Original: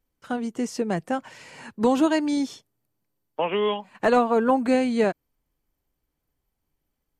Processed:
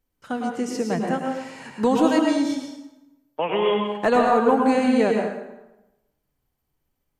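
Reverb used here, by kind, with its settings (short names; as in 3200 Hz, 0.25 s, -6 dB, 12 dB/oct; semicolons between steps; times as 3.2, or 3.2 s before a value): plate-style reverb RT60 0.98 s, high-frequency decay 0.7×, pre-delay 90 ms, DRR 1 dB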